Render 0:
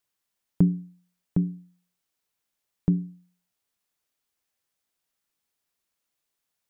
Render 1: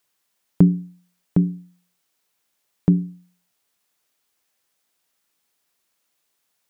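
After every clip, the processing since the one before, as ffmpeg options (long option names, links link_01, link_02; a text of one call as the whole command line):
ffmpeg -i in.wav -af "lowshelf=frequency=110:gain=-10,volume=9dB" out.wav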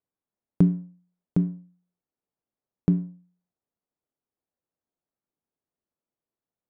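ffmpeg -i in.wav -af "adynamicsmooth=sensitivity=5:basefreq=660,volume=-5dB" out.wav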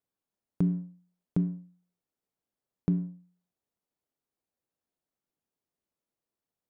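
ffmpeg -i in.wav -af "alimiter=limit=-16.5dB:level=0:latency=1:release=161" out.wav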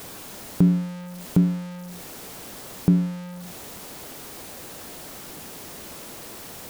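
ffmpeg -i in.wav -af "aeval=exprs='val(0)+0.5*0.0106*sgn(val(0))':channel_layout=same,volume=8.5dB" out.wav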